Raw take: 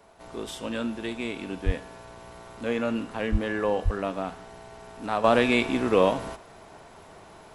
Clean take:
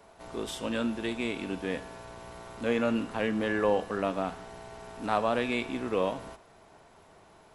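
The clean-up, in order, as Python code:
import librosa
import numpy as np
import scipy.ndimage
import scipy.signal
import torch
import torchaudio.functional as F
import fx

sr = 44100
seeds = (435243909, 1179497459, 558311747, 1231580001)

y = fx.fix_deplosive(x, sr, at_s=(1.65, 3.31, 3.84))
y = fx.fix_level(y, sr, at_s=5.24, step_db=-8.0)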